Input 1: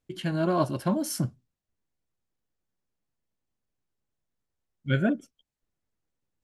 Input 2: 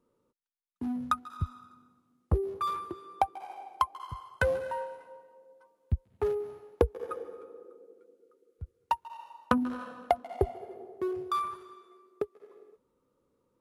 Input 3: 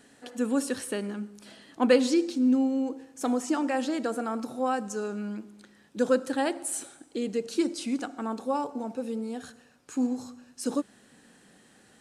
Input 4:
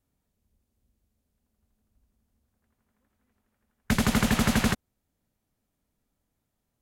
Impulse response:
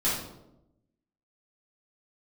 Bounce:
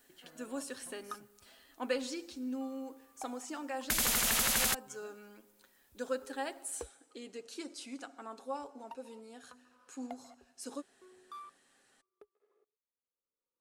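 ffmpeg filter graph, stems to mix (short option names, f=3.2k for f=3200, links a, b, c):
-filter_complex "[0:a]acompressor=threshold=-36dB:ratio=6,volume=-15.5dB[a];[1:a]aeval=exprs='val(0)*pow(10,-21*if(lt(mod(-0.87*n/s,1),2*abs(-0.87)/1000),1-mod(-0.87*n/s,1)/(2*abs(-0.87)/1000),(mod(-0.87*n/s,1)-2*abs(-0.87)/1000)/(1-2*abs(-0.87)/1000))/20)':c=same,volume=-14dB[b];[2:a]aecho=1:1:7.4:0.38,volume=-9dB[c];[3:a]aemphasis=mode=production:type=75kf,volume=0.5dB[d];[a][b][c][d]amix=inputs=4:normalize=0,equalizer=f=130:t=o:w=2.6:g=-14.5,alimiter=limit=-19.5dB:level=0:latency=1:release=75"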